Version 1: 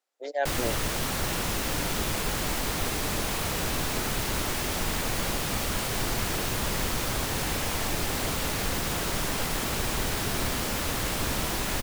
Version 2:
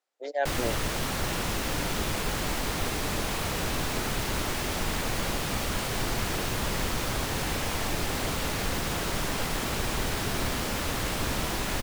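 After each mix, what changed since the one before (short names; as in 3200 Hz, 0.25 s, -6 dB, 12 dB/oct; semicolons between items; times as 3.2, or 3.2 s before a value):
master: add high shelf 7000 Hz -5 dB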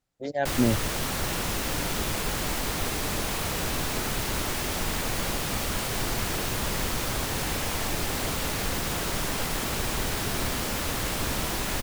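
speech: remove HPF 400 Hz 24 dB/oct; master: add high shelf 7000 Hz +5 dB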